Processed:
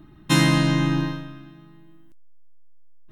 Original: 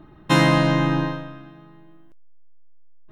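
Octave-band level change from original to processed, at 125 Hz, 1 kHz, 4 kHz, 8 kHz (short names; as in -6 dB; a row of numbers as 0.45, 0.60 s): 0.0, -6.0, +1.5, +5.5 dB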